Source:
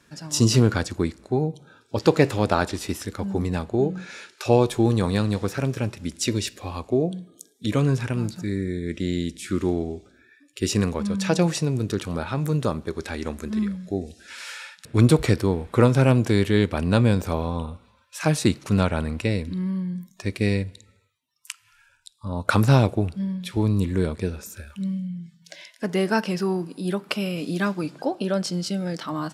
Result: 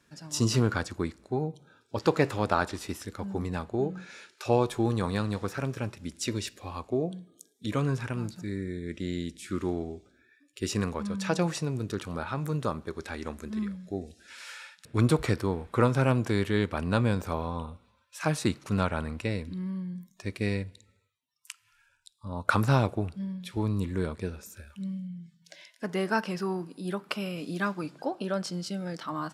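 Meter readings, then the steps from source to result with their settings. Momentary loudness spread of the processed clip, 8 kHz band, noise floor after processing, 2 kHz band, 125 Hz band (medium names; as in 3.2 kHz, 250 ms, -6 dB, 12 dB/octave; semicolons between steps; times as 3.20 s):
14 LU, -7.5 dB, -68 dBFS, -4.0 dB, -7.5 dB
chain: dynamic bell 1.2 kHz, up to +6 dB, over -40 dBFS, Q 1.1; trim -7.5 dB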